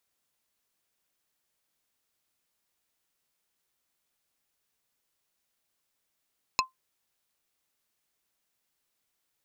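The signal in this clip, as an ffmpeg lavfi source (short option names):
-f lavfi -i "aevalsrc='0.119*pow(10,-3*t/0.14)*sin(2*PI*1040*t)+0.112*pow(10,-3*t/0.047)*sin(2*PI*2600*t)+0.106*pow(10,-3*t/0.027)*sin(2*PI*4160*t)+0.1*pow(10,-3*t/0.02)*sin(2*PI*5200*t)+0.0944*pow(10,-3*t/0.015)*sin(2*PI*6760*t)':d=0.45:s=44100"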